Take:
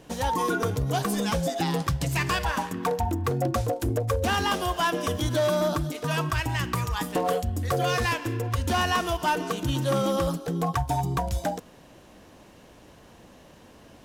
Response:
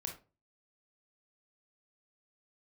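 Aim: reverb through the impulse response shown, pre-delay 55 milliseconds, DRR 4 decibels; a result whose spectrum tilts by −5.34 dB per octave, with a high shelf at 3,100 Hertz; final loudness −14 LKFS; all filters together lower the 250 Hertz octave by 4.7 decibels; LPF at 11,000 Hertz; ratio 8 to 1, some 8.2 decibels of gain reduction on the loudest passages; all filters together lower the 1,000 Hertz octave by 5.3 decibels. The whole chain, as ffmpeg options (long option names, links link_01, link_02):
-filter_complex "[0:a]lowpass=11000,equalizer=frequency=250:width_type=o:gain=-7,equalizer=frequency=1000:width_type=o:gain=-5.5,highshelf=frequency=3100:gain=-8.5,acompressor=threshold=-32dB:ratio=8,asplit=2[link_01][link_02];[1:a]atrim=start_sample=2205,adelay=55[link_03];[link_02][link_03]afir=irnorm=-1:irlink=0,volume=-2.5dB[link_04];[link_01][link_04]amix=inputs=2:normalize=0,volume=20dB"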